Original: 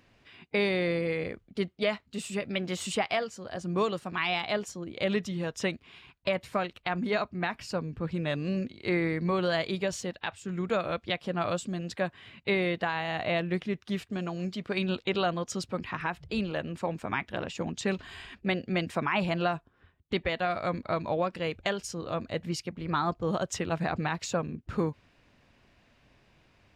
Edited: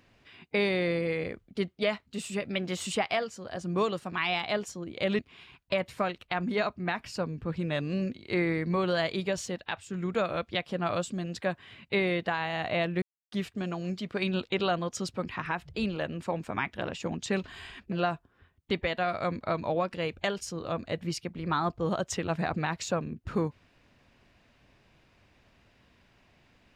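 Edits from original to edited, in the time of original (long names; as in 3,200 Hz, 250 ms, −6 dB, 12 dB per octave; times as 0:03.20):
0:05.19–0:05.74: remove
0:13.57–0:13.87: silence
0:18.47–0:19.34: remove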